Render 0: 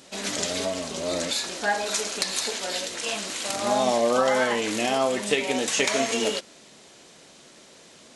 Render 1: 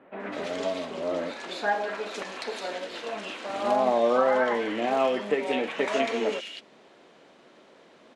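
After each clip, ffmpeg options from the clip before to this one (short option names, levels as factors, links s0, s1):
-filter_complex "[0:a]acrossover=split=210 3000:gain=0.251 1 0.0708[s0][s1][s2];[s0][s1][s2]amix=inputs=3:normalize=0,acrossover=split=2200[s3][s4];[s4]adelay=200[s5];[s3][s5]amix=inputs=2:normalize=0"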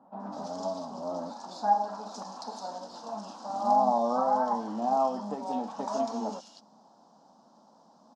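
-af "firequalizer=gain_entry='entry(130,0);entry(210,10);entry(380,-10);entry(830,12);entry(2100,-27);entry(5100,9);entry(9700,-6)':delay=0.05:min_phase=1,volume=0.447"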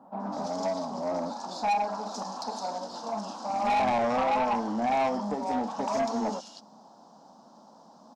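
-af "asoftclip=type=tanh:threshold=0.0422,volume=1.88"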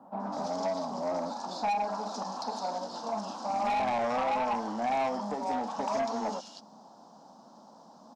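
-filter_complex "[0:a]acrossover=split=520|5800[s0][s1][s2];[s0]acompressor=threshold=0.0141:ratio=4[s3];[s1]acompressor=threshold=0.0398:ratio=4[s4];[s2]acompressor=threshold=0.00158:ratio=4[s5];[s3][s4][s5]amix=inputs=3:normalize=0"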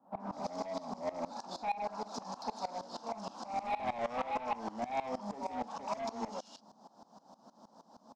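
-af "asoftclip=type=tanh:threshold=0.0531,aeval=exprs='val(0)*pow(10,-19*if(lt(mod(-6.4*n/s,1),2*abs(-6.4)/1000),1-mod(-6.4*n/s,1)/(2*abs(-6.4)/1000),(mod(-6.4*n/s,1)-2*abs(-6.4)/1000)/(1-2*abs(-6.4)/1000))/20)':c=same,volume=1.12"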